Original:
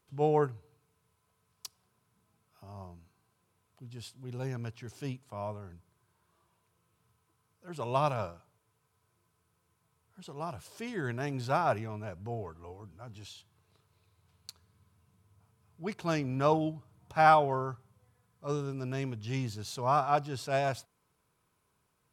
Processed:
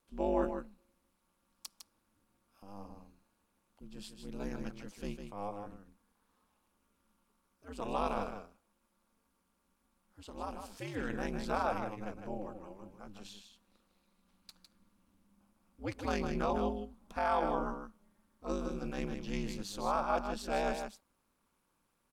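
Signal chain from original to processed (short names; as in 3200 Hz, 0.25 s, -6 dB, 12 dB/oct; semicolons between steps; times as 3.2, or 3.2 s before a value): limiter -20 dBFS, peak gain reduction 9.5 dB; ring modulator 100 Hz; on a send: echo 0.155 s -7 dB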